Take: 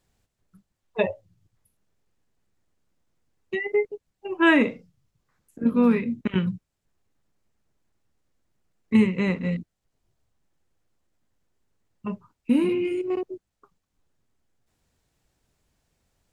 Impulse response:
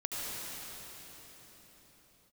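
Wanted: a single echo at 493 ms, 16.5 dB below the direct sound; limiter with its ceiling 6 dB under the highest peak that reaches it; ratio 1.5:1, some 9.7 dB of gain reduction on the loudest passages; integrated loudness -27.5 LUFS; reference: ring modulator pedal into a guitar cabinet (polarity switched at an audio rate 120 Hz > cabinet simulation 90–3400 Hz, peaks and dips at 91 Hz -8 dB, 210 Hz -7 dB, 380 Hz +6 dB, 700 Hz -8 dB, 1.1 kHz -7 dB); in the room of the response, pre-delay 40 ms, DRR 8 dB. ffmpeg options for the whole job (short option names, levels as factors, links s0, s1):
-filter_complex "[0:a]acompressor=threshold=0.00794:ratio=1.5,alimiter=limit=0.0668:level=0:latency=1,aecho=1:1:493:0.15,asplit=2[s0][s1];[1:a]atrim=start_sample=2205,adelay=40[s2];[s1][s2]afir=irnorm=-1:irlink=0,volume=0.224[s3];[s0][s3]amix=inputs=2:normalize=0,aeval=exprs='val(0)*sgn(sin(2*PI*120*n/s))':c=same,highpass=90,equalizer=f=91:t=q:w=4:g=-8,equalizer=f=210:t=q:w=4:g=-7,equalizer=f=380:t=q:w=4:g=6,equalizer=f=700:t=q:w=4:g=-8,equalizer=f=1100:t=q:w=4:g=-7,lowpass=f=3400:w=0.5412,lowpass=f=3400:w=1.3066,volume=2.99"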